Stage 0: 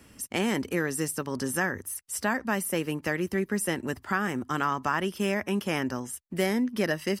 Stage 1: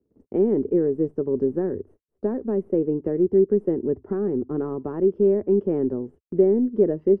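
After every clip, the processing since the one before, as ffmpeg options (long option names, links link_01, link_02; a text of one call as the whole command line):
ffmpeg -i in.wav -af "aeval=exprs='0.251*(cos(1*acos(clip(val(0)/0.251,-1,1)))-cos(1*PI/2))+0.00891*(cos(5*acos(clip(val(0)/0.251,-1,1)))-cos(5*PI/2))+0.0126*(cos(6*acos(clip(val(0)/0.251,-1,1)))-cos(6*PI/2))+0.0141*(cos(8*acos(clip(val(0)/0.251,-1,1)))-cos(8*PI/2))':channel_layout=same,lowpass=frequency=410:width_type=q:width=4.6,agate=range=-23dB:threshold=-46dB:ratio=16:detection=peak" out.wav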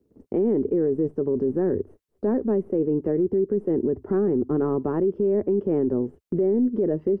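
ffmpeg -i in.wav -filter_complex "[0:a]asplit=2[link_01][link_02];[link_02]acompressor=threshold=-25dB:ratio=6,volume=-2dB[link_03];[link_01][link_03]amix=inputs=2:normalize=0,alimiter=limit=-16dB:level=0:latency=1:release=21,volume=1dB" out.wav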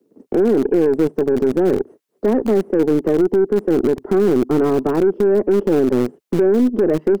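ffmpeg -i in.wav -filter_complex "[0:a]acrossover=split=170|390|560[link_01][link_02][link_03][link_04];[link_01]acrusher=bits=3:dc=4:mix=0:aa=0.000001[link_05];[link_05][link_02][link_03][link_04]amix=inputs=4:normalize=0,aeval=exprs='0.224*(cos(1*acos(clip(val(0)/0.224,-1,1)))-cos(1*PI/2))+0.00708*(cos(4*acos(clip(val(0)/0.224,-1,1)))-cos(4*PI/2))+0.0158*(cos(6*acos(clip(val(0)/0.224,-1,1)))-cos(6*PI/2))+0.00141*(cos(8*acos(clip(val(0)/0.224,-1,1)))-cos(8*PI/2))':channel_layout=same,volume=7.5dB" out.wav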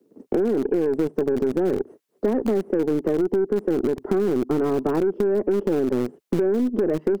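ffmpeg -i in.wav -af "acompressor=threshold=-18dB:ratio=6" out.wav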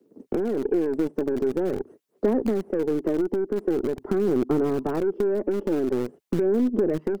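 ffmpeg -i in.wav -af "aphaser=in_gain=1:out_gain=1:delay=3.5:decay=0.29:speed=0.45:type=sinusoidal,volume=-3dB" out.wav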